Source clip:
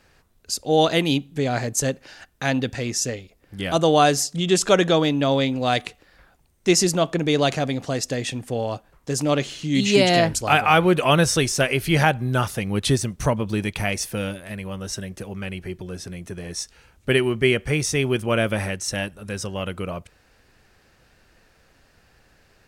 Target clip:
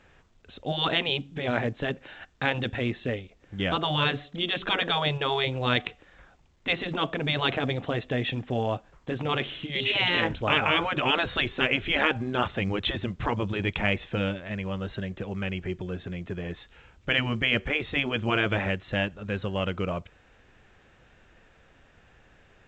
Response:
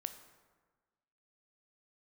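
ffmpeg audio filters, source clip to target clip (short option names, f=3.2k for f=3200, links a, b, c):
-af "aresample=8000,aresample=44100,afftfilt=real='re*lt(hypot(re,im),0.447)':imag='im*lt(hypot(re,im),0.447)':win_size=1024:overlap=0.75" -ar 16000 -c:a pcm_alaw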